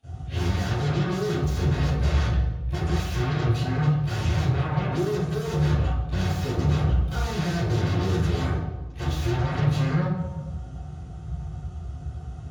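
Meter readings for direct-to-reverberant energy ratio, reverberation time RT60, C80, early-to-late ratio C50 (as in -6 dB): -21.5 dB, 1.2 s, 1.5 dB, -4.5 dB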